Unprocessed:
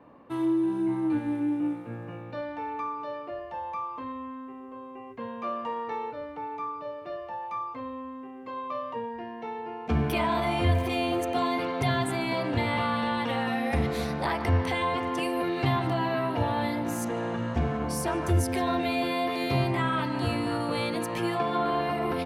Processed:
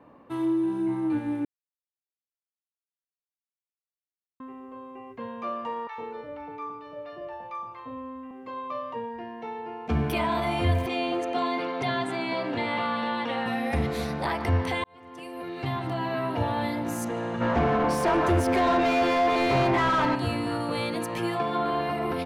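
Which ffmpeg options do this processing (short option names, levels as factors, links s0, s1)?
-filter_complex "[0:a]asettb=1/sr,asplit=3[s0][s1][s2];[s0]atrim=end=5.874[s3];[s1]atrim=start=5.87:end=8.31,asetpts=PTS-STARTPTS,afade=t=in:d=0.004:c=qsin,afade=t=out:st=2.436:d=0.004:c=qsin,acrossover=split=870|5900[s4][s5][s6];[s6]adelay=40[s7];[s4]adelay=110[s8];[s8][s5][s7]amix=inputs=3:normalize=0,atrim=end_sample=107604[s9];[s2]atrim=start=8.306[s10];[s3][s9]acrossfade=d=0.004:c1=hsin:c2=qsin[s11];[s11][s10]acrossfade=d=0.004:c1=qsin:c2=hsin,asettb=1/sr,asplit=3[s12][s13][s14];[s12]atrim=end=10.864[s15];[s13]atrim=start=10.86:end=13.46,asetpts=PTS-STARTPTS,afade=t=in:d=0.004:c=qsin,afade=t=out:st=2.596:d=0.004:c=qsin,highpass=200,lowpass=6000[s16];[s14]atrim=start=13.456[s17];[s15][s16]acrossfade=d=0.004:c1=hsin:c2=qsin[s18];[s18][s17]acrossfade=d=0.004:c1=qsin:c2=hsin,asplit=3[s19][s20][s21];[s19]afade=t=out:st=17.4:d=0.02[s22];[s20]asplit=2[s23][s24];[s24]highpass=f=720:p=1,volume=15.8,asoftclip=type=tanh:threshold=0.224[s25];[s23][s25]amix=inputs=2:normalize=0,lowpass=f=1100:p=1,volume=0.501,afade=t=in:st=17.4:d=0.02,afade=t=out:st=20.14:d=0.02[s26];[s21]afade=t=in:st=20.14:d=0.02[s27];[s22][s26][s27]amix=inputs=3:normalize=0,asplit=4[s28][s29][s30][s31];[s28]atrim=end=1.45,asetpts=PTS-STARTPTS,afade=t=out:st=1.446:d=0.004:c=hsin[s32];[s29]atrim=start=1.45:end=4.4,asetpts=PTS-STARTPTS,volume=0[s33];[s30]atrim=start=4.4:end=14.84,asetpts=PTS-STARTPTS,afade=t=in:d=0.004:c=hsin,afade=t=out:st=10.436:d=0.004:c=hsin[s34];[s31]atrim=start=14.84,asetpts=PTS-STARTPTS,afade=t=in:d=1.5[s35];[s32][s33][s34][s35]concat=n=4:v=0:a=1"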